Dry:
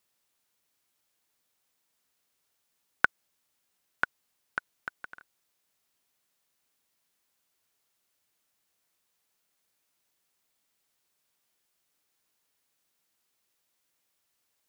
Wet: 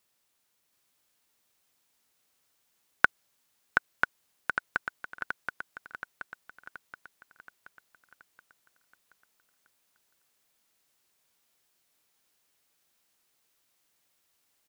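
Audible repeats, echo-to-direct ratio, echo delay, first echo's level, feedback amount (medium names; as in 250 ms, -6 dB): 6, -2.5 dB, 726 ms, -4.0 dB, 51%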